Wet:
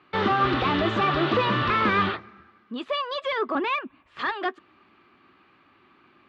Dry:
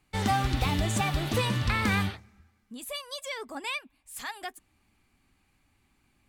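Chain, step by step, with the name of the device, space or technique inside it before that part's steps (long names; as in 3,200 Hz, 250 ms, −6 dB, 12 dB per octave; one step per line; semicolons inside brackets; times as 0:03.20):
0:03.55–0:04.19: bass and treble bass +10 dB, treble −12 dB
overdrive pedal into a guitar cabinet (mid-hump overdrive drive 24 dB, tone 1,800 Hz, clips at −13.5 dBFS; loudspeaker in its box 81–3,800 Hz, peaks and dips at 84 Hz −4 dB, 360 Hz +8 dB, 810 Hz −6 dB, 1,200 Hz +7 dB, 2,200 Hz −5 dB)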